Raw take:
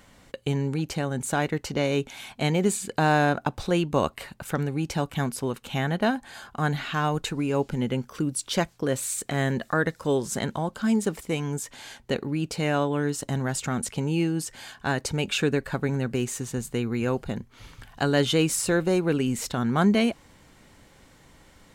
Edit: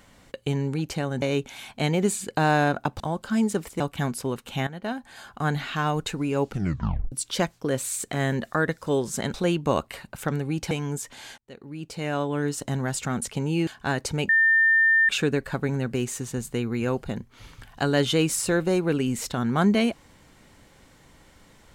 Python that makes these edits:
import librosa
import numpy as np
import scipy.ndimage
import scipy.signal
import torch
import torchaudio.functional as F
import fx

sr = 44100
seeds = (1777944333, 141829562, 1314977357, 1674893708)

y = fx.edit(x, sr, fx.cut(start_s=1.22, length_s=0.61),
    fx.swap(start_s=3.61, length_s=1.37, other_s=10.52, other_length_s=0.8),
    fx.fade_in_from(start_s=5.85, length_s=0.68, floor_db=-15.0),
    fx.tape_stop(start_s=7.67, length_s=0.63),
    fx.fade_in_span(start_s=11.99, length_s=1.08),
    fx.cut(start_s=14.28, length_s=0.39),
    fx.insert_tone(at_s=15.29, length_s=0.8, hz=1800.0, db=-15.5), tone=tone)